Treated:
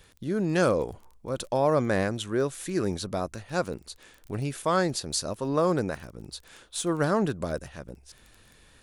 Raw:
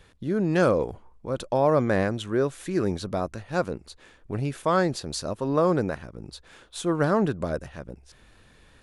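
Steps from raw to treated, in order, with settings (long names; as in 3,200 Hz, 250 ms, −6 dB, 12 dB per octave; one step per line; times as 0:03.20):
surface crackle 17 per second −41 dBFS
high-shelf EQ 4,400 Hz +10 dB
level −2.5 dB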